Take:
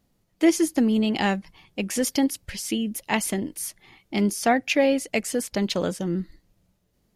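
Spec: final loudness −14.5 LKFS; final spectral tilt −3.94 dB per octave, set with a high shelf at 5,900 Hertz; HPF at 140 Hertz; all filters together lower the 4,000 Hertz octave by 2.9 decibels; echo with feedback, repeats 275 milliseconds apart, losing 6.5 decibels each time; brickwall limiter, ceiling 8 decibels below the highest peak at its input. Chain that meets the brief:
high-pass filter 140 Hz
parametric band 4,000 Hz −7.5 dB
high-shelf EQ 5,900 Hz +8 dB
brickwall limiter −15.5 dBFS
repeating echo 275 ms, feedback 47%, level −6.5 dB
level +11 dB

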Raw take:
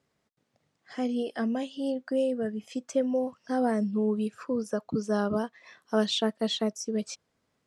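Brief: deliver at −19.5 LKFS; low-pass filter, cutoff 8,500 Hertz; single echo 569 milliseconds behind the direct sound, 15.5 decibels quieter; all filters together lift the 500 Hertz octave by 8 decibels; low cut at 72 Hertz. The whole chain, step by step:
high-pass filter 72 Hz
low-pass filter 8,500 Hz
parametric band 500 Hz +9 dB
single-tap delay 569 ms −15.5 dB
level +5 dB

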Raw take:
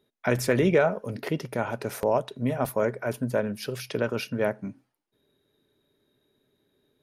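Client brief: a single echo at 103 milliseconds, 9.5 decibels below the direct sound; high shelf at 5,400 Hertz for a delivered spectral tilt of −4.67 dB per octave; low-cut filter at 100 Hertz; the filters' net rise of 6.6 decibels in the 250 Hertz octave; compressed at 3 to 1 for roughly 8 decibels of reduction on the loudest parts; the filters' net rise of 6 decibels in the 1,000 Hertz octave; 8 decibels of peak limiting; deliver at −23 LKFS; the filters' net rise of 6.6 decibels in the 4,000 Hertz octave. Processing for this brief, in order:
high-pass filter 100 Hz
parametric band 250 Hz +8 dB
parametric band 1,000 Hz +7 dB
parametric band 4,000 Hz +4.5 dB
high-shelf EQ 5,400 Hz +8.5 dB
downward compressor 3 to 1, threshold −24 dBFS
brickwall limiter −19.5 dBFS
single-tap delay 103 ms −9.5 dB
level +7.5 dB

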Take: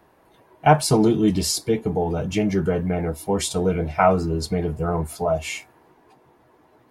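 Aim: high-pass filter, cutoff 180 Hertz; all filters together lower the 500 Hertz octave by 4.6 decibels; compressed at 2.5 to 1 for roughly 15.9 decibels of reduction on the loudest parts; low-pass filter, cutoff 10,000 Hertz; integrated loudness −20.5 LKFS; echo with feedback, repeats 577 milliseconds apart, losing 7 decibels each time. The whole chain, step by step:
high-pass filter 180 Hz
low-pass filter 10,000 Hz
parametric band 500 Hz −6 dB
downward compressor 2.5 to 1, threshold −38 dBFS
repeating echo 577 ms, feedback 45%, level −7 dB
level +15.5 dB

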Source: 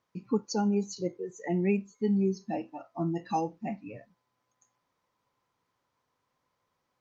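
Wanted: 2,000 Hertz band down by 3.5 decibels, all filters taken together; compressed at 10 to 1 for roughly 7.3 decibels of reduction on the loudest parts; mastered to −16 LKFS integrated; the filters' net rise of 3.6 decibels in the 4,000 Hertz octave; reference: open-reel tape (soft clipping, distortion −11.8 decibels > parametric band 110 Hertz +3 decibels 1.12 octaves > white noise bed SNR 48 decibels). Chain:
parametric band 2,000 Hz −6.5 dB
parametric band 4,000 Hz +5.5 dB
downward compressor 10 to 1, threshold −30 dBFS
soft clipping −33.5 dBFS
parametric band 110 Hz +3 dB 1.12 octaves
white noise bed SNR 48 dB
level +24 dB

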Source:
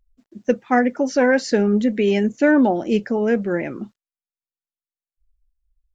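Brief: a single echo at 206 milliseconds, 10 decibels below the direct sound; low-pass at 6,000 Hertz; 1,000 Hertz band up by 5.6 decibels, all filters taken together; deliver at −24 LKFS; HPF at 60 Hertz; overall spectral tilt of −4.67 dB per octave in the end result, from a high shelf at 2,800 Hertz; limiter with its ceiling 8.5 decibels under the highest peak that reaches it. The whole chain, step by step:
high-pass filter 60 Hz
low-pass filter 6,000 Hz
parametric band 1,000 Hz +8 dB
high-shelf EQ 2,800 Hz +4 dB
brickwall limiter −10 dBFS
single-tap delay 206 ms −10 dB
level −4.5 dB

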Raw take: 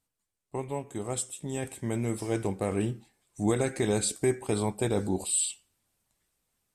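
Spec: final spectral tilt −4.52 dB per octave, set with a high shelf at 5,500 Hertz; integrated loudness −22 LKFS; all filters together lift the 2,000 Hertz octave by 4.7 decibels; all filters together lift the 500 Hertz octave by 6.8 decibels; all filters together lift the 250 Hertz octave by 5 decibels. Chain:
parametric band 250 Hz +4 dB
parametric band 500 Hz +7 dB
parametric band 2,000 Hz +4.5 dB
high-shelf EQ 5,500 Hz +6 dB
level +3 dB

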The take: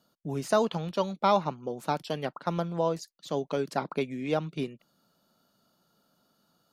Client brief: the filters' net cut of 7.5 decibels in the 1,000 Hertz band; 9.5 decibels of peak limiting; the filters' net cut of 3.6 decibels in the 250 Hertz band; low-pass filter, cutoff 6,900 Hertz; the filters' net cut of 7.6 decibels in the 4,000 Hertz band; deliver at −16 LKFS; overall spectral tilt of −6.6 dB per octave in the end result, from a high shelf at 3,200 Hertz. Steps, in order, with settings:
low-pass filter 6,900 Hz
parametric band 250 Hz −4.5 dB
parametric band 1,000 Hz −9 dB
high-shelf EQ 3,200 Hz −3 dB
parametric band 4,000 Hz −6.5 dB
level +22.5 dB
brickwall limiter −3.5 dBFS

